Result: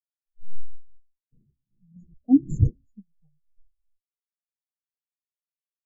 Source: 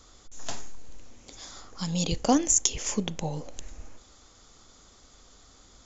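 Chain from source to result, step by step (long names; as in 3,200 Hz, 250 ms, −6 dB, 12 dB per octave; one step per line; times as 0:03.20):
0:01.31–0:02.95: wind on the microphone 320 Hz −24 dBFS
tuned comb filter 68 Hz, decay 0.3 s, harmonics all, mix 50%
every bin expanded away from the loudest bin 4 to 1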